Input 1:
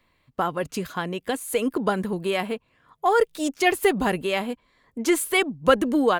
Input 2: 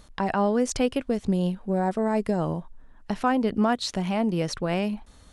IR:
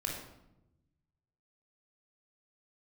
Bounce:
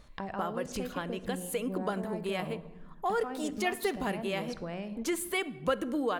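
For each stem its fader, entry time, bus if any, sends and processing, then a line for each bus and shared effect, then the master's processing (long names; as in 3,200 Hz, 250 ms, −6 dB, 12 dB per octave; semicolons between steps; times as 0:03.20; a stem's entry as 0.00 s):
−4.5 dB, 0.00 s, send −16 dB, no processing
−6.5 dB, 0.00 s, send −11 dB, high-shelf EQ 8,000 Hz −11.5 dB; downward compressor 2 to 1, threshold −29 dBFS, peak gain reduction 6.5 dB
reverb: on, RT60 0.90 s, pre-delay 21 ms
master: downward compressor 1.5 to 1, threshold −40 dBFS, peak gain reduction 9 dB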